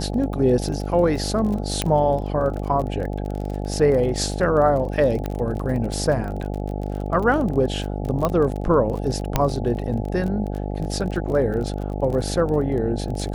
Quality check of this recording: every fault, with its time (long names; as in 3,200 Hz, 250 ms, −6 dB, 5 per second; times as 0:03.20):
mains buzz 50 Hz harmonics 17 −27 dBFS
surface crackle 27 per second −28 dBFS
0:01.82: click −6 dBFS
0:05.26: click −14 dBFS
0:08.25: click −9 dBFS
0:09.36: click −4 dBFS